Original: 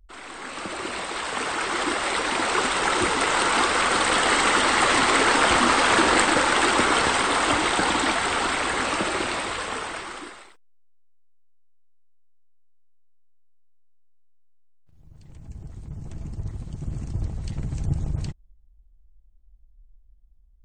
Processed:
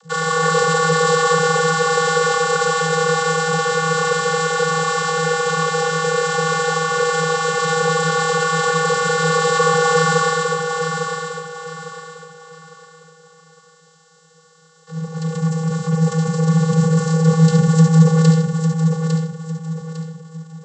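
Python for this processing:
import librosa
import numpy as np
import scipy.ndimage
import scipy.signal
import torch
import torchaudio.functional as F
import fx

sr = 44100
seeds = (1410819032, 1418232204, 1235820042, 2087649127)

p1 = fx.bin_compress(x, sr, power=0.6)
p2 = np.clip(p1, -10.0 ** (-14.5 / 20.0), 10.0 ** (-14.5 / 20.0))
p3 = p1 + F.gain(torch.from_numpy(p2), -4.5).numpy()
p4 = fx.fixed_phaser(p3, sr, hz=490.0, stages=8)
p5 = p4 + 10.0 ** (-9.0 / 20.0) * np.pad(p4, (int(71 * sr / 1000.0), 0))[:len(p4)]
p6 = fx.leveller(p5, sr, passes=3)
p7 = fx.over_compress(p6, sr, threshold_db=-13.0, ratio=-1.0)
p8 = fx.high_shelf(p7, sr, hz=3900.0, db=11.5)
p9 = p8 + fx.echo_feedback(p8, sr, ms=853, feedback_pct=33, wet_db=-6.0, dry=0)
p10 = fx.vocoder(p9, sr, bands=32, carrier='square', carrier_hz=161.0)
p11 = fx.low_shelf(p10, sr, hz=160.0, db=-9.5)
p12 = fx.hum_notches(p11, sr, base_hz=50, count=3)
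y = F.gain(torch.from_numpy(p12), -1.0).numpy()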